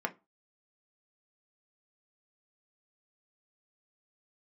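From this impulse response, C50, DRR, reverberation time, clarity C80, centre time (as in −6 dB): 20.5 dB, 3.5 dB, 0.25 s, 29.0 dB, 5 ms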